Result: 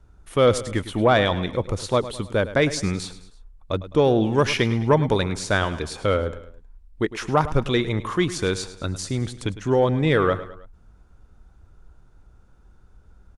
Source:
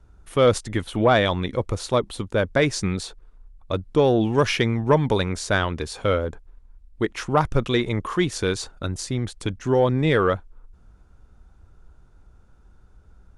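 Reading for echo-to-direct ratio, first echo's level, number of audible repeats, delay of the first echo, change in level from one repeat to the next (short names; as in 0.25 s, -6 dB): -13.5 dB, -14.5 dB, 3, 0.105 s, -6.5 dB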